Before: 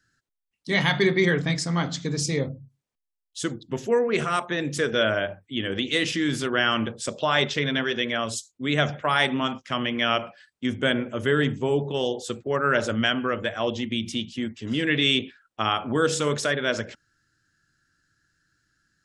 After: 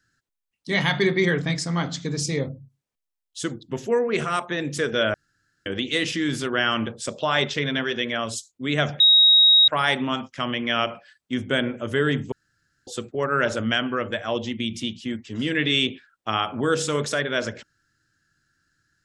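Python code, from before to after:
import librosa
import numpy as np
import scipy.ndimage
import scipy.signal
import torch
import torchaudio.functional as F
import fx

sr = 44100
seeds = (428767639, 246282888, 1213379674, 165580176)

y = fx.edit(x, sr, fx.room_tone_fill(start_s=5.14, length_s=0.52),
    fx.insert_tone(at_s=9.0, length_s=0.68, hz=3790.0, db=-11.0),
    fx.room_tone_fill(start_s=11.64, length_s=0.55), tone=tone)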